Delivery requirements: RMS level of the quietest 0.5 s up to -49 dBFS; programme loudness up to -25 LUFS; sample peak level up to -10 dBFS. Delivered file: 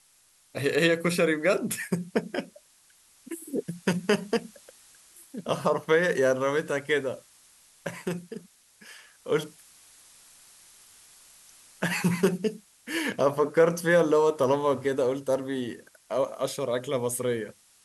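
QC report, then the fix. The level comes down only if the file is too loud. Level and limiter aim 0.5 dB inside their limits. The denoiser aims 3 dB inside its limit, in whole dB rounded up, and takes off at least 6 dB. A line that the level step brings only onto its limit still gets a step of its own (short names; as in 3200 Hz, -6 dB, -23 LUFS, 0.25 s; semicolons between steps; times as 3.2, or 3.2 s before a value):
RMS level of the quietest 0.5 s -62 dBFS: OK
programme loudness -27.0 LUFS: OK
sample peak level -9.0 dBFS: fail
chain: limiter -10.5 dBFS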